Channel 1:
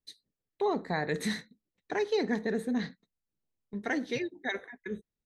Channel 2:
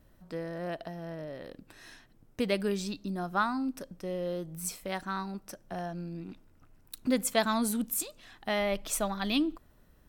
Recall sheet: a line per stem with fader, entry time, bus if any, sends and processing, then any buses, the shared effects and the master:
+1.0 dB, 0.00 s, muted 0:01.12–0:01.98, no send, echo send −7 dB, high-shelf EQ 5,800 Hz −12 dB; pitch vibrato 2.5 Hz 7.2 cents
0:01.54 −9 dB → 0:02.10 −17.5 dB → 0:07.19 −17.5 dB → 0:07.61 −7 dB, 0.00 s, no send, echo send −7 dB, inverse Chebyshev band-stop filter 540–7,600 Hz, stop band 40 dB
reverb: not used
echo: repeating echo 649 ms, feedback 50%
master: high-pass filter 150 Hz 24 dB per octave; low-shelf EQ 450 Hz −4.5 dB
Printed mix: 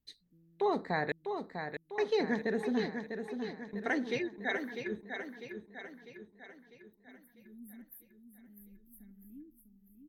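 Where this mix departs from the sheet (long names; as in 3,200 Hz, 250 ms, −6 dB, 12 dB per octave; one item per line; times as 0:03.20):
stem 2 −9.0 dB → −17.5 dB
master: missing high-pass filter 150 Hz 24 dB per octave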